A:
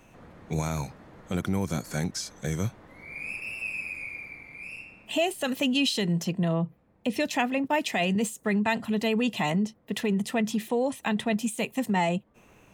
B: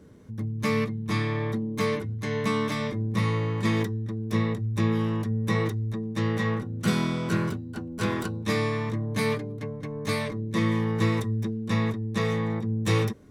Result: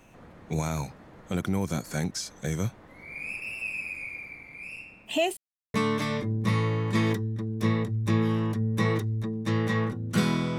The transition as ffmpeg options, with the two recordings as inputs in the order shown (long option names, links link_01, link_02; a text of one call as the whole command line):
ffmpeg -i cue0.wav -i cue1.wav -filter_complex "[0:a]apad=whole_dur=10.58,atrim=end=10.58,asplit=2[link_01][link_02];[link_01]atrim=end=5.37,asetpts=PTS-STARTPTS,afade=type=out:start_time=5.366:duration=0.004:curve=hsin[link_03];[link_02]atrim=start=5.37:end=5.74,asetpts=PTS-STARTPTS,volume=0[link_04];[1:a]atrim=start=2.44:end=7.28,asetpts=PTS-STARTPTS,afade=type=in:duration=0.004:curve=hsin[link_05];[link_03][link_04][link_05]concat=n=3:v=0:a=1" out.wav